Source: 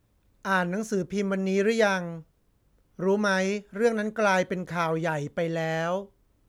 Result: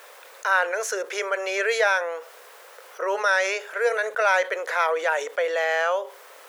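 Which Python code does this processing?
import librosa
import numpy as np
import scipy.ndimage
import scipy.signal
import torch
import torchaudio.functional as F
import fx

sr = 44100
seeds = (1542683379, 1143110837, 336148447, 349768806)

y = scipy.signal.sosfilt(scipy.signal.ellip(4, 1.0, 60, 480.0, 'highpass', fs=sr, output='sos'), x)
y = fx.peak_eq(y, sr, hz=1700.0, db=5.0, octaves=1.3)
y = fx.env_flatten(y, sr, amount_pct=50)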